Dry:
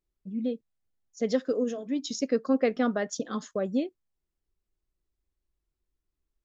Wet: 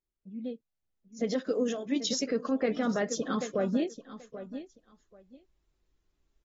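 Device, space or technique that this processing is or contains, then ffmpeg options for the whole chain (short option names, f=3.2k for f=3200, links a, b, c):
low-bitrate web radio: -filter_complex "[0:a]asettb=1/sr,asplit=3[a][b][c];[a]atrim=end=1.464[d];[b]atrim=start=1.46:end=2.26,asetpts=PTS-STARTPTS,afade=t=in:d=0.004:c=qsin,afade=t=out:st=0.796:d=0.004:c=qsin,tiltshelf=f=1.2k:g=-3.5[e];[c]atrim=start=2.256[f];[d][e]acrossfade=d=0.004:c1=hsin:c2=qsin[g];[g][f]acrossfade=d=0.004:c1=qsin:c2=hsin,aecho=1:1:784|1568:0.126|0.0189,dynaudnorm=f=370:g=7:m=16dB,alimiter=limit=-12.5dB:level=0:latency=1:release=44,volume=-8dB" -ar 48000 -c:a aac -b:a 24k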